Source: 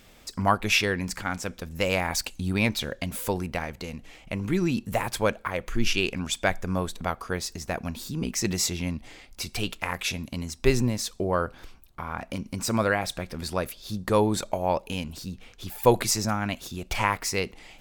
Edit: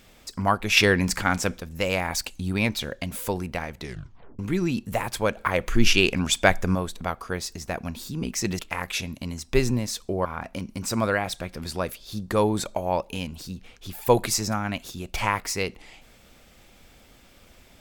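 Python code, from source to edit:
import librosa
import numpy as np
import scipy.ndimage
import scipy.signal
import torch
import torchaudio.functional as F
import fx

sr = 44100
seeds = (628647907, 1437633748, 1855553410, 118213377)

y = fx.edit(x, sr, fx.clip_gain(start_s=0.77, length_s=0.81, db=7.0),
    fx.tape_stop(start_s=3.77, length_s=0.62),
    fx.clip_gain(start_s=5.37, length_s=1.38, db=6.0),
    fx.cut(start_s=8.59, length_s=1.11),
    fx.cut(start_s=11.36, length_s=0.66), tone=tone)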